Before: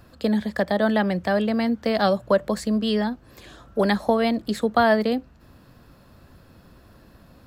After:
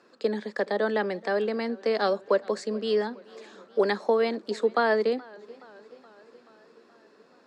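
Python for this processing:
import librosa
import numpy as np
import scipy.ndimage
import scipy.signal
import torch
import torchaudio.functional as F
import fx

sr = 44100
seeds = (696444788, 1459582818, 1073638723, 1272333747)

y = fx.cabinet(x, sr, low_hz=260.0, low_slope=24, high_hz=7400.0, hz=(280.0, 420.0, 680.0, 3200.0), db=(-4, 7, -5, -5))
y = fx.echo_warbled(y, sr, ms=426, feedback_pct=64, rate_hz=2.8, cents=103, wet_db=-23.5)
y = y * librosa.db_to_amplitude(-3.5)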